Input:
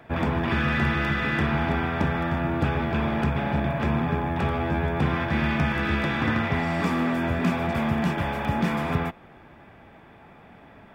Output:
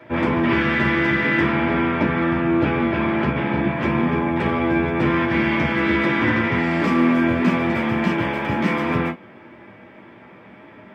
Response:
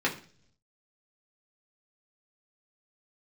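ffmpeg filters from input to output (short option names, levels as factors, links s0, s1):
-filter_complex "[0:a]asettb=1/sr,asplit=3[s0][s1][s2];[s0]atrim=end=1.524[s3];[s1]atrim=start=1.52:end=3.74,asetpts=PTS-STARTPTS,afade=t=in:d=0.004:c=qsin,afade=t=out:st=2.216:d=0.004:c=qsin,lowpass=4900[s4];[s2]atrim=start=3.736[s5];[s3][s4]acrossfade=d=0.004:c1=hsin:c2=qsin[s6];[s6][s5]acrossfade=d=0.004:c1=qsin:c2=hsin[s7];[1:a]atrim=start_sample=2205,atrim=end_sample=3087,asetrate=52920,aresample=44100[s8];[s7][s8]afir=irnorm=-1:irlink=0,volume=0.708"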